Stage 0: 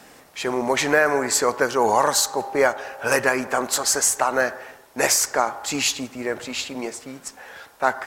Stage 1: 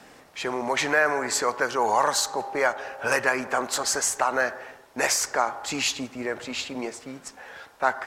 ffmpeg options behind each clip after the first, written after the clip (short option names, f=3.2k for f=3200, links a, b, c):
-filter_complex "[0:a]highshelf=f=8.9k:g=-11,acrossover=split=630[a][b];[a]alimiter=limit=-22.5dB:level=0:latency=1:release=219[c];[c][b]amix=inputs=2:normalize=0,volume=-1.5dB"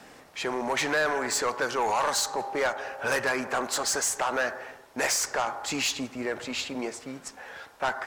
-af "asoftclip=type=tanh:threshold=-20dB"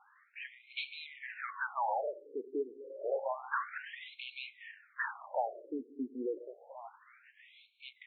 -af "dynaudnorm=f=420:g=9:m=5.5dB,afftfilt=real='re*between(b*sr/1024,330*pow(3100/330,0.5+0.5*sin(2*PI*0.29*pts/sr))/1.41,330*pow(3100/330,0.5+0.5*sin(2*PI*0.29*pts/sr))*1.41)':imag='im*between(b*sr/1024,330*pow(3100/330,0.5+0.5*sin(2*PI*0.29*pts/sr))/1.41,330*pow(3100/330,0.5+0.5*sin(2*PI*0.29*pts/sr))*1.41)':win_size=1024:overlap=0.75,volume=-8dB"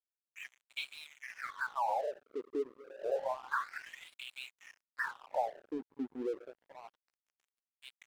-af "aeval=exprs='sgn(val(0))*max(abs(val(0))-0.00266,0)':c=same,volume=1dB"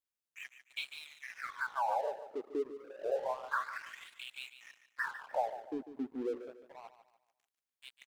-af "aecho=1:1:147|294|441|588:0.251|0.0904|0.0326|0.0117"